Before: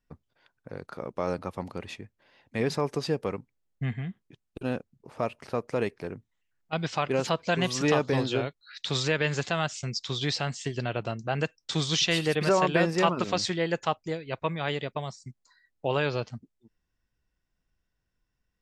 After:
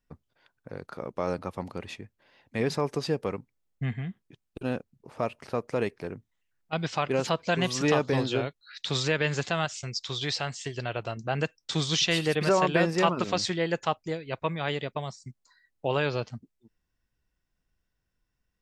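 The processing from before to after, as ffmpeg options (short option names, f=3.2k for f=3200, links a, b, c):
-filter_complex "[0:a]asettb=1/sr,asplit=3[a][b][c];[a]atrim=end=9.654[d];[b]atrim=start=9.65:end=11.17,asetpts=PTS-STARTPTS,afade=t=in:d=0.004:c=qsin,afade=t=out:st=1.516:d=0.004:c=qsin,equalizer=f=210:w=1.1:g=-7.5[e];[c]atrim=start=11.166[f];[d][e]acrossfade=d=0.004:c1=hsin:c2=qsin[g];[g][f]acrossfade=d=0.004:c1=qsin:c2=hsin"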